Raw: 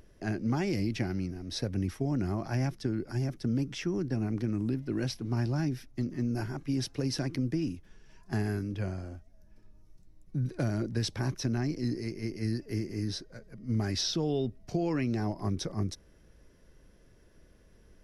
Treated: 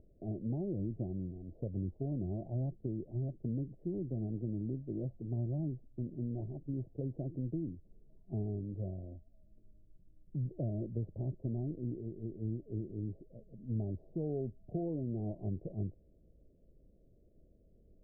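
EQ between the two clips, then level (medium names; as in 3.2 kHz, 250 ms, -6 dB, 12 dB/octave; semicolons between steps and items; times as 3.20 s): elliptic low-pass 650 Hz, stop band 50 dB; dynamic bell 260 Hz, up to -5 dB, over -47 dBFS, Q 2.6; distance through air 430 m; -4.0 dB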